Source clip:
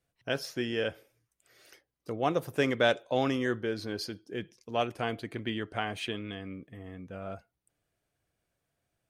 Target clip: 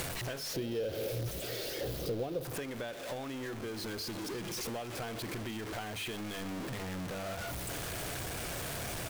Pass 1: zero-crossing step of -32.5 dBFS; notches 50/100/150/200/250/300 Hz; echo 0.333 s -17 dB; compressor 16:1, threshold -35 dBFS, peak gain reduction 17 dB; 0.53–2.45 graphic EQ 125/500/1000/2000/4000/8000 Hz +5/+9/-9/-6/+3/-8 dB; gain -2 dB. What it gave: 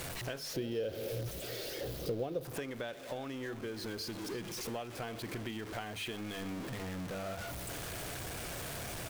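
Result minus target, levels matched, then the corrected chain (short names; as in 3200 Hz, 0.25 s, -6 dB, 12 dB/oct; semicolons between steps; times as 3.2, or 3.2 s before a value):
zero-crossing step: distortion -6 dB
zero-crossing step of -24 dBFS; notches 50/100/150/200/250/300 Hz; echo 0.333 s -17 dB; compressor 16:1, threshold -35 dBFS, peak gain reduction 18 dB; 0.53–2.45 graphic EQ 125/500/1000/2000/4000/8000 Hz +5/+9/-9/-6/+3/-8 dB; gain -2 dB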